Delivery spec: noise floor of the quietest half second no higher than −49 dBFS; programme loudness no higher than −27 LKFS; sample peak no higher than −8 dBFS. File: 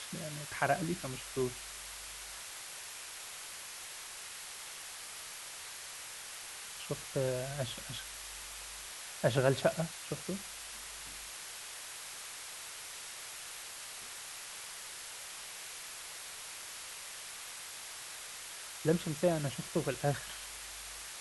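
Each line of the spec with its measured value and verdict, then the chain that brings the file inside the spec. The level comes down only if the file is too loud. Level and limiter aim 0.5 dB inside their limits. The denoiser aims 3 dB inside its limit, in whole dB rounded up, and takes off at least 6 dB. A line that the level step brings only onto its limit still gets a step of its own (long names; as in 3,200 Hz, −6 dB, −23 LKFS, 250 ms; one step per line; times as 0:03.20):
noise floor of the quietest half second −46 dBFS: out of spec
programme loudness −39.0 LKFS: in spec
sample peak −13.5 dBFS: in spec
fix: broadband denoise 6 dB, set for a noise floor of −46 dBFS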